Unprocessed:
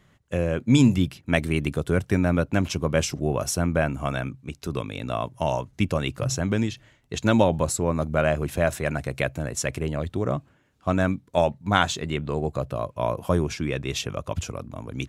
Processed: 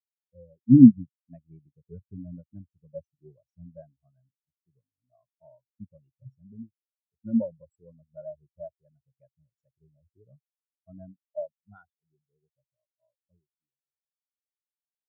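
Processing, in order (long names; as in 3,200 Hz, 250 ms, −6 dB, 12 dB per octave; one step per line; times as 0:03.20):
fade-out on the ending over 4.00 s
every bin expanded away from the loudest bin 4 to 1
level +3 dB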